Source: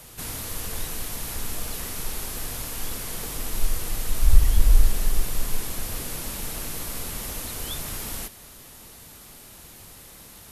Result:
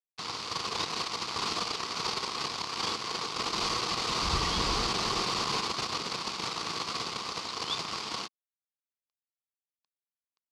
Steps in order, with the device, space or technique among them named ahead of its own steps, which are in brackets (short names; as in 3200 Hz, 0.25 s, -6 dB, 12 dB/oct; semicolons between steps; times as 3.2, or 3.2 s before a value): blown loudspeaker (crossover distortion -33.5 dBFS; speaker cabinet 220–5500 Hz, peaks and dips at 260 Hz -7 dB, 590 Hz -7 dB, 1100 Hz +10 dB, 1700 Hz -7 dB, 4600 Hz +7 dB); gain +8 dB